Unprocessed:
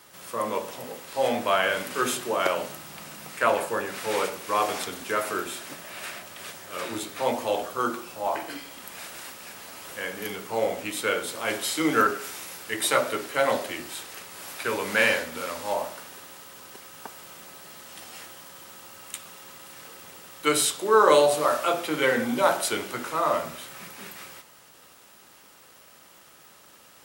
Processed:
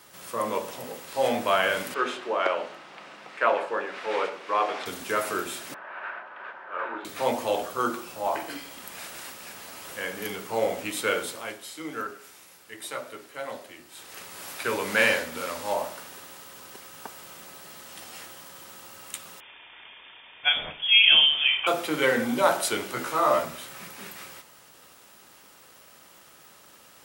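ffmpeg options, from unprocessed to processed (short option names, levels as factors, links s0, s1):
-filter_complex "[0:a]asettb=1/sr,asplit=3[s0][s1][s2];[s0]atrim=end=1.944[s3];[s1]atrim=start=1.94:end=4.86,asetpts=PTS-STARTPTS,afade=t=in:d=0.004:c=qsin,afade=t=out:st=2.916:d=0.004:c=qsin,highpass=340,lowpass=3100[s4];[s2]atrim=start=4.856[s5];[s3][s4]acrossfade=d=0.004:c1=hsin:c2=qsin[s6];[s6][s5]acrossfade=d=0.004:c1=qsin:c2=hsin,asettb=1/sr,asplit=3[s7][s8][s9];[s7]atrim=end=5.744[s10];[s8]atrim=start=5.74:end=7.05,asetpts=PTS-STARTPTS,afade=t=in:d=0.004:c=qsin,afade=t=out:st=1.306:d=0.004:c=qsin,highpass=450,equalizer=f=940:t=q:w=4:g=8,equalizer=f=1500:t=q:w=4:g=9,equalizer=f=2100:t=q:w=4:g=-5,lowpass=f=2200:w=0.5412,lowpass=f=2200:w=1.3066[s11];[s9]atrim=start=7.046[s12];[s10][s11]acrossfade=d=0.004:c1=hsin:c2=qsin[s13];[s13][s12]acrossfade=d=0.004:c1=qsin:c2=hsin,asettb=1/sr,asplit=3[s14][s15][s16];[s14]atrim=end=19.404[s17];[s15]atrim=start=19.4:end=21.67,asetpts=PTS-STARTPTS,afade=t=in:d=0.004:c=qsin,afade=t=out:st=2.266:d=0.004:c=qsin,lowpass=f=3100:t=q:w=0.5098,lowpass=f=3100:t=q:w=0.6013,lowpass=f=3100:t=q:w=0.9,lowpass=f=3100:t=q:w=2.563,afreqshift=-3700[s18];[s16]atrim=start=21.666[s19];[s17][s18]acrossfade=d=0.004:c1=hsin:c2=qsin[s20];[s20][s19]acrossfade=d=0.004:c1=qsin:c2=hsin,asettb=1/sr,asplit=3[s21][s22][s23];[s21]atrim=end=22.954[s24];[s22]atrim=start=22.95:end=23.45,asetpts=PTS-STARTPTS,afade=t=in:d=0.004:c=qsin,afade=t=out:st=0.496:d=0.004:c=qsin,asplit=2[s25][s26];[s26]adelay=15,volume=0.631[s27];[s25][s27]amix=inputs=2:normalize=0,atrim=end_sample=22050[s28];[s23]atrim=start=23.446[s29];[s24][s28]acrossfade=d=0.004:c1=hsin:c2=qsin[s30];[s30][s29]acrossfade=d=0.004:c1=qsin:c2=hsin,asplit=3[s31][s32][s33];[s31]atrim=end=11.55,asetpts=PTS-STARTPTS,afade=t=out:st=11.22:d=0.33:silence=0.237137[s34];[s32]atrim=start=11.55:end=13.91,asetpts=PTS-STARTPTS,volume=0.237[s35];[s33]atrim=start=13.91,asetpts=PTS-STARTPTS,afade=t=in:d=0.33:silence=0.237137[s36];[s34][s35][s36]concat=n=3:v=0:a=1"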